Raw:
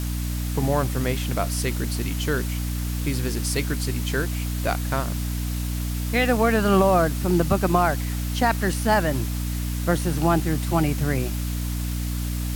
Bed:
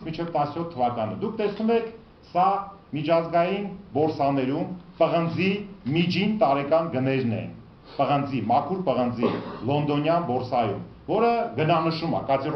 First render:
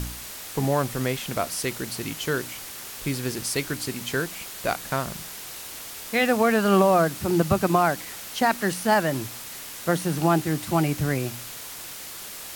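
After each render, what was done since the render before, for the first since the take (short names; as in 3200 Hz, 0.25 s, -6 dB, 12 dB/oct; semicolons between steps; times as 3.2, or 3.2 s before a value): de-hum 60 Hz, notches 5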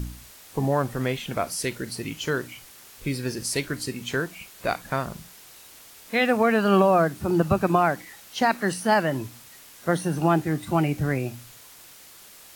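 noise print and reduce 10 dB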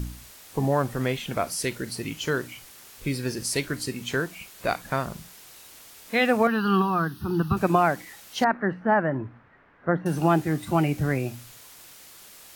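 6.47–7.57 fixed phaser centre 2200 Hz, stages 6; 8.44–10.06 Chebyshev low-pass 1700 Hz, order 3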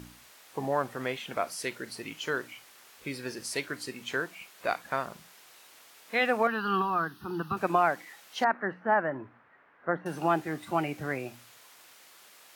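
HPF 730 Hz 6 dB/oct; high shelf 3600 Hz -10 dB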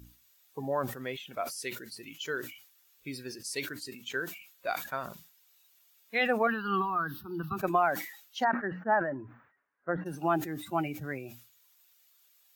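per-bin expansion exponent 1.5; sustainer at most 92 dB/s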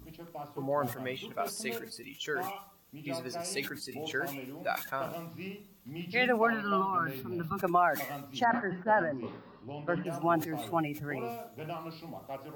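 add bed -18.5 dB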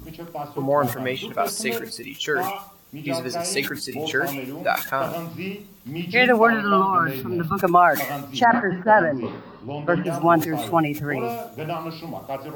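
gain +11 dB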